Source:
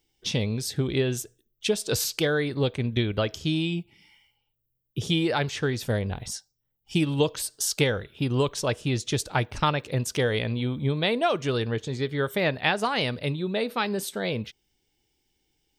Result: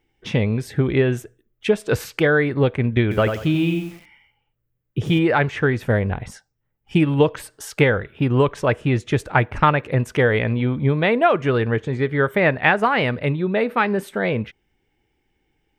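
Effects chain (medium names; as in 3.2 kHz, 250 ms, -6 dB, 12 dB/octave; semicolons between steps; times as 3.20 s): resonant high shelf 3 kHz -14 dB, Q 1.5; 3.02–5.19 s: bit-crushed delay 91 ms, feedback 35%, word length 8-bit, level -7 dB; trim +7 dB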